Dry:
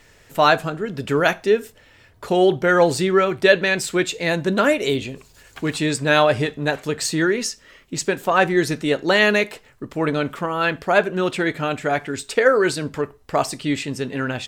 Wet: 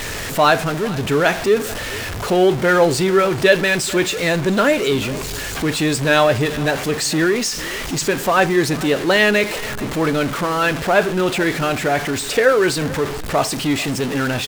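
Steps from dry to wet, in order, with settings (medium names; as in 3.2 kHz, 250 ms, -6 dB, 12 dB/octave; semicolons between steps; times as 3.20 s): jump at every zero crossing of -20.5 dBFS; treble shelf 11 kHz -4.5 dB; delay 439 ms -19 dB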